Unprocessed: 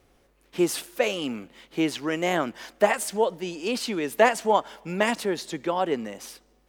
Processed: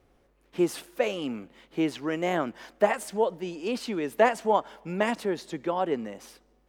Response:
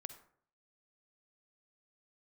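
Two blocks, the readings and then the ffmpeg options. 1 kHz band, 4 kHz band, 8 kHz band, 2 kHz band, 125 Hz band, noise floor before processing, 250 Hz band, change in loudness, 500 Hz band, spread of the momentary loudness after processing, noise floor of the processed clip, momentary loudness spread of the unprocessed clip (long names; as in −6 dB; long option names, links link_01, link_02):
−2.5 dB, −7.0 dB, −9.0 dB, −4.5 dB, −1.5 dB, −63 dBFS, −1.5 dB, −2.5 dB, −2.0 dB, 12 LU, −65 dBFS, 13 LU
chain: -af "highshelf=frequency=2400:gain=-8,volume=-1.5dB"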